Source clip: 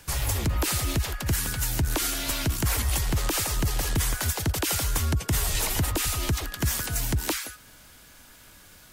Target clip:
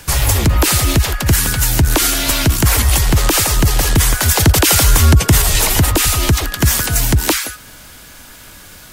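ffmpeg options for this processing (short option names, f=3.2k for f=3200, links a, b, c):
-filter_complex "[0:a]asettb=1/sr,asplit=3[a][b][c];[a]atrim=end=4.314[d];[b]atrim=start=4.31:end=5.42,asetpts=PTS-STARTPTS,afade=t=in:d=0.004:c=qsin,afade=t=out:st=1.106:d=0.004:c=qsin,acontrast=39[e];[c]atrim=start=5.416[f];[d][e]acrossfade=d=0.004:c1=hsin:c2=qsin[g];[g][f]acrossfade=d=0.004:c1=qsin:c2=hsin,alimiter=level_in=14dB:limit=-1dB:release=50:level=0:latency=1,volume=-1dB"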